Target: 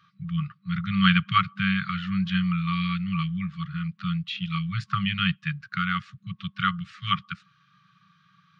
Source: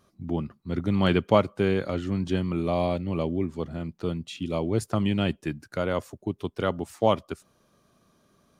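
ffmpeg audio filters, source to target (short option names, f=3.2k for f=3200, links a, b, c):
-af "afftfilt=real='re*(1-between(b*sr/4096,200,1100))':imag='im*(1-between(b*sr/4096,200,1100))':win_size=4096:overlap=0.75,highpass=f=140:w=0.5412,highpass=f=140:w=1.3066,equalizer=f=230:t=q:w=4:g=-10,equalizer=f=330:t=q:w=4:g=-7,equalizer=f=470:t=q:w=4:g=5,equalizer=f=670:t=q:w=4:g=4,lowpass=f=3.8k:w=0.5412,lowpass=f=3.8k:w=1.3066,volume=8.5dB"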